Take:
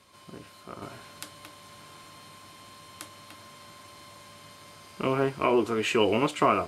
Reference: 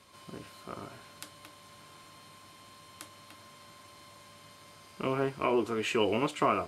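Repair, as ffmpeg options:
ffmpeg -i in.wav -af "asetnsamples=nb_out_samples=441:pad=0,asendcmd='0.82 volume volume -4.5dB',volume=0dB" out.wav

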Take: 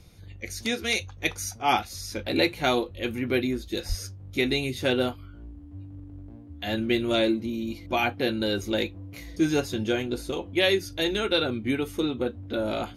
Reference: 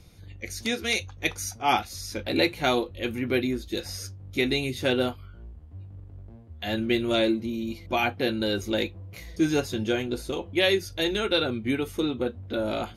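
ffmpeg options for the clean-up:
ffmpeg -i in.wav -filter_complex "[0:a]bandreject=frequency=290:width=30,asplit=3[link_01][link_02][link_03];[link_01]afade=type=out:start_time=3.88:duration=0.02[link_04];[link_02]highpass=frequency=140:width=0.5412,highpass=frequency=140:width=1.3066,afade=type=in:start_time=3.88:duration=0.02,afade=type=out:start_time=4:duration=0.02[link_05];[link_03]afade=type=in:start_time=4:duration=0.02[link_06];[link_04][link_05][link_06]amix=inputs=3:normalize=0" out.wav

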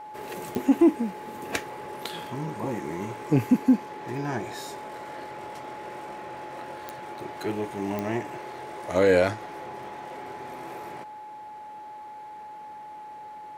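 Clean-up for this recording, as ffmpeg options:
ffmpeg -i in.wav -af "adeclick=threshold=4,bandreject=frequency=850:width=30" out.wav

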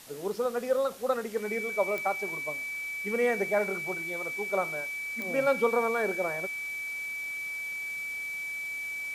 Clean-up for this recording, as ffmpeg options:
ffmpeg -i in.wav -af "adeclick=threshold=4,bandreject=frequency=2300:width=30,afwtdn=0.0035" out.wav

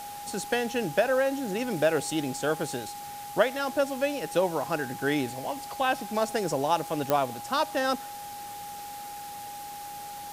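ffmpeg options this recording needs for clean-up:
ffmpeg -i in.wav -af "adeclick=threshold=4,bandreject=frequency=820:width=30,afwtdn=0.0056" out.wav

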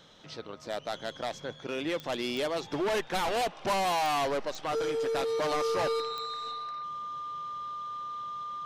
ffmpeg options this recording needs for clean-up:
ffmpeg -i in.wav -af "adeclick=threshold=4,bandreject=frequency=1200:width=30" out.wav

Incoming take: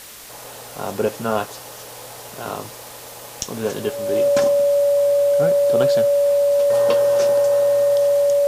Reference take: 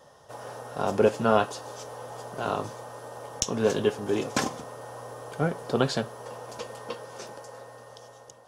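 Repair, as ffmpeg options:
ffmpeg -i in.wav -af "bandreject=frequency=570:width=30,afwtdn=0.013,asetnsamples=nb_out_samples=441:pad=0,asendcmd='6.7 volume volume -12dB',volume=0dB" out.wav

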